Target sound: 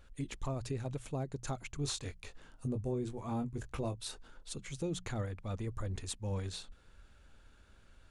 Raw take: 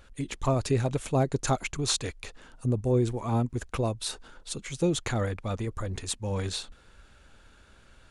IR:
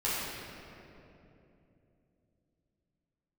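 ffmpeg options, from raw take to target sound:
-filter_complex "[0:a]lowshelf=frequency=180:gain=6,bandreject=frequency=60:width_type=h:width=6,bandreject=frequency=120:width_type=h:width=6,bandreject=frequency=180:width_type=h:width=6,alimiter=limit=-19dB:level=0:latency=1:release=456,asettb=1/sr,asplit=3[link_01][link_02][link_03];[link_01]atrim=end=1.784[link_04];[link_02]atrim=start=1.78:end=4.07,asetpts=PTS-STARTPTS,afade=type=in:duration=0.004:curve=qsin,afade=type=out:start_time=2.286:duration=0.004:curve=qsin,asplit=2[link_05][link_06];[link_06]adelay=21,volume=-7.5dB[link_07];[link_05][link_07]amix=inputs=2:normalize=0,atrim=end_sample=100989[link_08];[link_03]atrim=start=4.066[link_09];[link_04][link_08]acrossfade=duration=0.004:curve1=hsin:curve2=qsin[link_10];[link_10][link_09]acrossfade=duration=0.004:curve1=qsin:curve2=hsin,volume=-8.5dB"

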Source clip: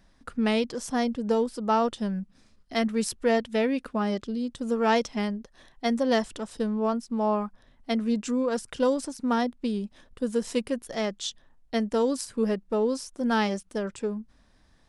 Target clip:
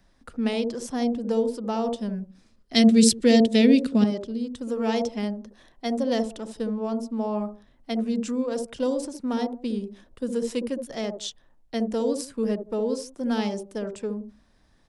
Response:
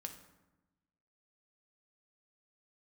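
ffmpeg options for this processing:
-filter_complex "[0:a]asettb=1/sr,asplit=3[link_01][link_02][link_03];[link_01]atrim=end=2.744[link_04];[link_02]atrim=start=2.74:end=4.04,asetpts=PTS-STARTPTS,afade=type=in:duration=0.004:curve=qsin,afade=type=out:start_time=1.296:duration=0.004:curve=qsin,equalizer=frequency=125:width_type=o:width=1:gain=10,equalizer=frequency=250:width_type=o:width=1:gain=9,equalizer=frequency=500:width_type=o:width=1:gain=3,equalizer=frequency=1000:width_type=o:width=1:gain=-4,equalizer=frequency=2000:width_type=o:width=1:gain=6,equalizer=frequency=4000:width_type=o:width=1:gain=12,equalizer=frequency=8000:width_type=o:width=1:gain=11[link_05];[link_03]atrim=start=4.036[link_06];[link_04][link_05]acrossfade=duration=0.004:curve1=hsin:curve2=qsin[link_07];[link_07][link_06]acrossfade=duration=0.004:curve1=qsin:curve2=hsin,acrossover=split=170|780|2100[link_08][link_09][link_10][link_11];[link_09]aecho=1:1:63|76|172:0.501|0.501|0.112[link_12];[link_10]acompressor=threshold=-45dB:ratio=6[link_13];[link_08][link_12][link_13][link_11]amix=inputs=4:normalize=0,volume=-1dB"

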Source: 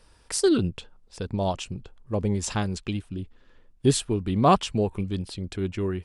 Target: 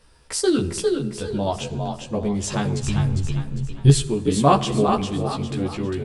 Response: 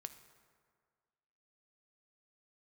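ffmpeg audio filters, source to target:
-filter_complex "[0:a]asplit=6[link_01][link_02][link_03][link_04][link_05][link_06];[link_02]adelay=402,afreqshift=37,volume=-5dB[link_07];[link_03]adelay=804,afreqshift=74,volume=-13.6dB[link_08];[link_04]adelay=1206,afreqshift=111,volume=-22.3dB[link_09];[link_05]adelay=1608,afreqshift=148,volume=-30.9dB[link_10];[link_06]adelay=2010,afreqshift=185,volume=-39.5dB[link_11];[link_01][link_07][link_08][link_09][link_10][link_11]amix=inputs=6:normalize=0,asplit=2[link_12][link_13];[1:a]atrim=start_sample=2205,adelay=14[link_14];[link_13][link_14]afir=irnorm=-1:irlink=0,volume=3.5dB[link_15];[link_12][link_15]amix=inputs=2:normalize=0,asplit=3[link_16][link_17][link_18];[link_16]afade=type=out:start_time=2.81:duration=0.02[link_19];[link_17]asubboost=boost=11:cutoff=97,afade=type=in:start_time=2.81:duration=0.02,afade=type=out:start_time=4.06:duration=0.02[link_20];[link_18]afade=type=in:start_time=4.06:duration=0.02[link_21];[link_19][link_20][link_21]amix=inputs=3:normalize=0"

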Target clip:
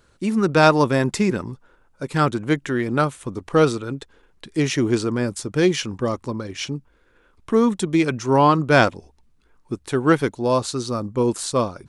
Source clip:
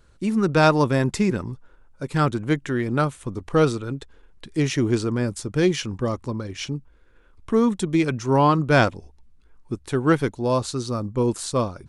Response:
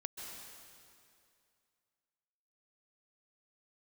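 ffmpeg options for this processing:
-af "lowshelf=frequency=100:gain=-11,volume=3dB"

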